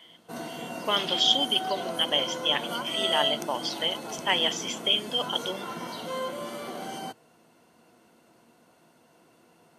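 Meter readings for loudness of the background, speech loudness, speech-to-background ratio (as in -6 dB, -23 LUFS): -35.5 LUFS, -26.0 LUFS, 9.5 dB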